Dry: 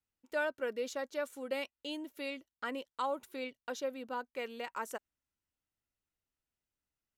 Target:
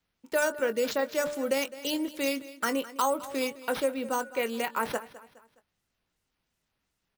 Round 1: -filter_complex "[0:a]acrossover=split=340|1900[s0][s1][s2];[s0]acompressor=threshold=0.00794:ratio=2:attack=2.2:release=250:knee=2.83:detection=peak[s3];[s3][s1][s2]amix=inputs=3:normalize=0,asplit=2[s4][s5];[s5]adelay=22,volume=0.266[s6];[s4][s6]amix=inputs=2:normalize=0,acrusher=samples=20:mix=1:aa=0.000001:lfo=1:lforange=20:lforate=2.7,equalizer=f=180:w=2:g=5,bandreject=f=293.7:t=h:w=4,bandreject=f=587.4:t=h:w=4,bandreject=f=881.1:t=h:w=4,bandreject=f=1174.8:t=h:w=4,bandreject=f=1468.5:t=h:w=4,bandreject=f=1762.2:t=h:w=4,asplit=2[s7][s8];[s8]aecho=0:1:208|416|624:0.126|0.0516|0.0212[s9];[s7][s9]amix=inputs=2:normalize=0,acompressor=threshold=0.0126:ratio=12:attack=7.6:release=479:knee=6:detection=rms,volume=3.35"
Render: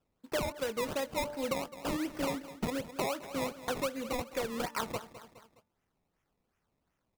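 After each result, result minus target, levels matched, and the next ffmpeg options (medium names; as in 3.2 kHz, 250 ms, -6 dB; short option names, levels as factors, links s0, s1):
decimation with a swept rate: distortion +15 dB; compression: peak gain reduction +8.5 dB
-filter_complex "[0:a]acrossover=split=340|1900[s0][s1][s2];[s0]acompressor=threshold=0.00794:ratio=2:attack=2.2:release=250:knee=2.83:detection=peak[s3];[s3][s1][s2]amix=inputs=3:normalize=0,asplit=2[s4][s5];[s5]adelay=22,volume=0.266[s6];[s4][s6]amix=inputs=2:normalize=0,acrusher=samples=4:mix=1:aa=0.000001:lfo=1:lforange=4:lforate=2.7,equalizer=f=180:w=2:g=5,bandreject=f=293.7:t=h:w=4,bandreject=f=587.4:t=h:w=4,bandreject=f=881.1:t=h:w=4,bandreject=f=1174.8:t=h:w=4,bandreject=f=1468.5:t=h:w=4,bandreject=f=1762.2:t=h:w=4,asplit=2[s7][s8];[s8]aecho=0:1:208|416|624:0.126|0.0516|0.0212[s9];[s7][s9]amix=inputs=2:normalize=0,acompressor=threshold=0.0126:ratio=12:attack=7.6:release=479:knee=6:detection=rms,volume=3.35"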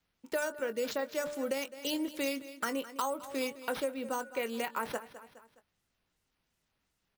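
compression: peak gain reduction +8 dB
-filter_complex "[0:a]acrossover=split=340|1900[s0][s1][s2];[s0]acompressor=threshold=0.00794:ratio=2:attack=2.2:release=250:knee=2.83:detection=peak[s3];[s3][s1][s2]amix=inputs=3:normalize=0,asplit=2[s4][s5];[s5]adelay=22,volume=0.266[s6];[s4][s6]amix=inputs=2:normalize=0,acrusher=samples=4:mix=1:aa=0.000001:lfo=1:lforange=4:lforate=2.7,equalizer=f=180:w=2:g=5,bandreject=f=293.7:t=h:w=4,bandreject=f=587.4:t=h:w=4,bandreject=f=881.1:t=h:w=4,bandreject=f=1174.8:t=h:w=4,bandreject=f=1468.5:t=h:w=4,bandreject=f=1762.2:t=h:w=4,asplit=2[s7][s8];[s8]aecho=0:1:208|416|624:0.126|0.0516|0.0212[s9];[s7][s9]amix=inputs=2:normalize=0,acompressor=threshold=0.0355:ratio=12:attack=7.6:release=479:knee=6:detection=rms,volume=3.35"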